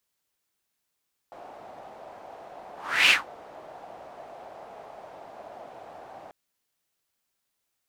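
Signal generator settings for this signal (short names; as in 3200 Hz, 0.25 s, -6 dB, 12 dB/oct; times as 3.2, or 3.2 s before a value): whoosh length 4.99 s, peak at 1.78, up 0.38 s, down 0.17 s, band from 700 Hz, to 2700 Hz, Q 3.8, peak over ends 27 dB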